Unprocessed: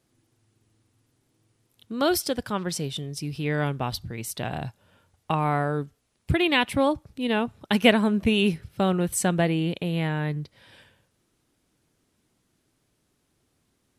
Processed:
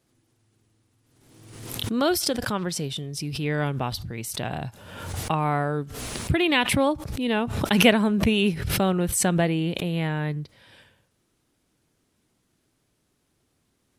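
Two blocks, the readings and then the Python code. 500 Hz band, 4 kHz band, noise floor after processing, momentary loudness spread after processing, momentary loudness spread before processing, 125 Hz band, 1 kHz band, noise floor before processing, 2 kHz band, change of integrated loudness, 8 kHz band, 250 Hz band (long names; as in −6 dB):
+0.5 dB, +2.0 dB, −71 dBFS, 13 LU, 12 LU, +1.5 dB, +0.5 dB, −72 dBFS, +1.0 dB, +1.0 dB, +4.0 dB, +1.0 dB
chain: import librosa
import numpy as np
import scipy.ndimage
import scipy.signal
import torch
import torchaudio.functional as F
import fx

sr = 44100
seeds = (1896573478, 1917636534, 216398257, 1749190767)

y = fx.pre_swell(x, sr, db_per_s=47.0)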